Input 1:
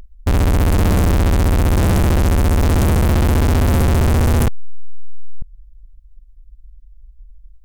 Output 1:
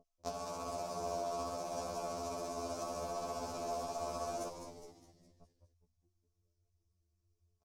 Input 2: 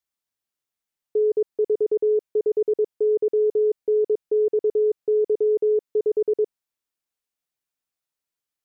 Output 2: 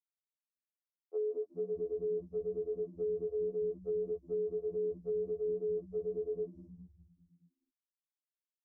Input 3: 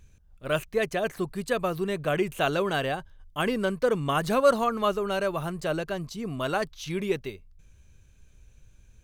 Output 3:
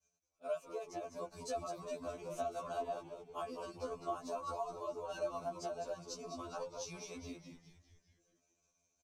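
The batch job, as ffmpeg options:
-filter_complex "[0:a]agate=range=0.0224:threshold=0.00447:ratio=3:detection=peak,asplit=3[s0][s1][s2];[s0]bandpass=f=730:t=q:w=8,volume=1[s3];[s1]bandpass=f=1090:t=q:w=8,volume=0.501[s4];[s2]bandpass=f=2440:t=q:w=8,volume=0.355[s5];[s3][s4][s5]amix=inputs=3:normalize=0,aecho=1:1:4.6:0.92,acompressor=threshold=0.00891:ratio=6,highshelf=f=4000:t=q:w=3:g=13,asplit=2[s6][s7];[s7]asplit=6[s8][s9][s10][s11][s12][s13];[s8]adelay=206,afreqshift=-120,volume=0.447[s14];[s9]adelay=412,afreqshift=-240,volume=0.224[s15];[s10]adelay=618,afreqshift=-360,volume=0.112[s16];[s11]adelay=824,afreqshift=-480,volume=0.0556[s17];[s12]adelay=1030,afreqshift=-600,volume=0.0279[s18];[s13]adelay=1236,afreqshift=-720,volume=0.014[s19];[s14][s15][s16][s17][s18][s19]amix=inputs=6:normalize=0[s20];[s6][s20]amix=inputs=2:normalize=0,afftfilt=real='re*2*eq(mod(b,4),0)':imag='im*2*eq(mod(b,4),0)':win_size=2048:overlap=0.75,volume=1.68"

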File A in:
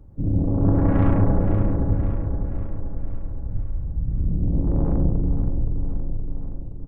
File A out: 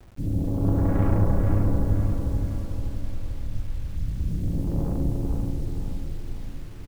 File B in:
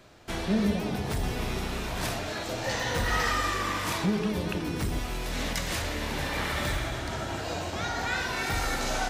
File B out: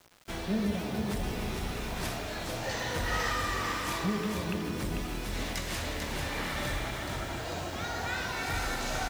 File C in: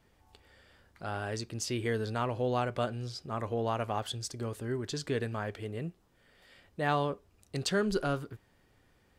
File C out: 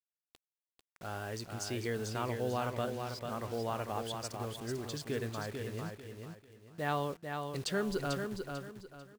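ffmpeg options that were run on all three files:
-af "acrusher=bits=7:mix=0:aa=0.000001,aecho=1:1:444|888|1332|1776:0.531|0.159|0.0478|0.0143,volume=0.596"

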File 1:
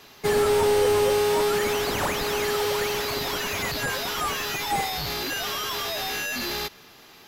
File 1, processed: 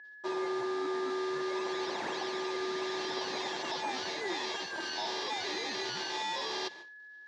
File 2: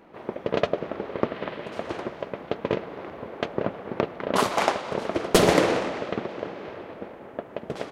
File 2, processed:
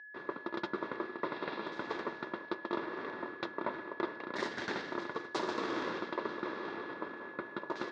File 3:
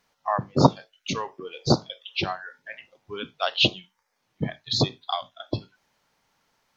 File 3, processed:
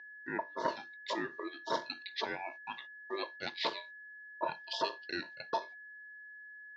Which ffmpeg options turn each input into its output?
-af "agate=range=0.00794:threshold=0.00501:ratio=16:detection=peak,areverse,acompressor=threshold=0.0316:ratio=8,areverse,asuperstop=centerf=2200:order=20:qfactor=7.1,aeval=exprs='val(0)*sin(2*PI*790*n/s)':c=same,aeval=exprs='val(0)+0.00447*sin(2*PI*1700*n/s)':c=same,highpass=250,equalizer=f=350:t=q:w=4:g=7,equalizer=f=870:t=q:w=4:g=7,equalizer=f=1300:t=q:w=4:g=-7,equalizer=f=2500:t=q:w=4:g=-5,equalizer=f=3800:t=q:w=4:g=3,lowpass=f=5900:w=0.5412,lowpass=f=5900:w=1.3066"

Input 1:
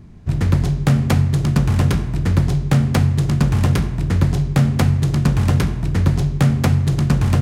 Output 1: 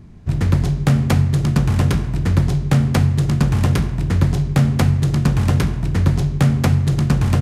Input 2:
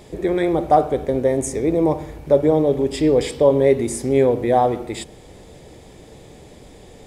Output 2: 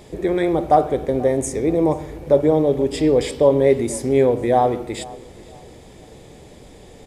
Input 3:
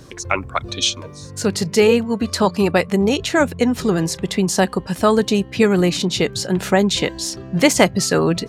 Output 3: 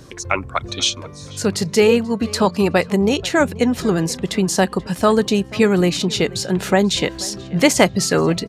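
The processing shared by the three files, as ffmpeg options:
-filter_complex "[0:a]asplit=2[s0][s1];[s1]adelay=484,lowpass=f=4000:p=1,volume=0.0944,asplit=2[s2][s3];[s3]adelay=484,lowpass=f=4000:p=1,volume=0.33,asplit=2[s4][s5];[s5]adelay=484,lowpass=f=4000:p=1,volume=0.33[s6];[s0][s2][s4][s6]amix=inputs=4:normalize=0,aresample=32000,aresample=44100"

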